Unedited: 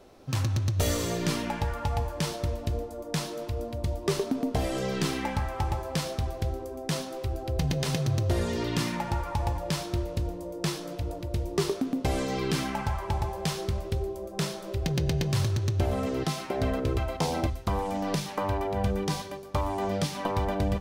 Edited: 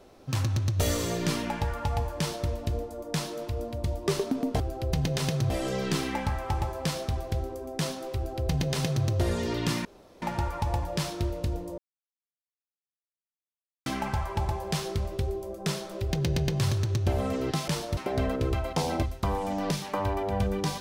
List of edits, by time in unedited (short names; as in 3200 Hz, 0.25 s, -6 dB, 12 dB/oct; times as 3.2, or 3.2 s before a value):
2.19–2.48 copy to 16.41
7.26–8.16 copy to 4.6
8.95 insert room tone 0.37 s
10.51–12.59 mute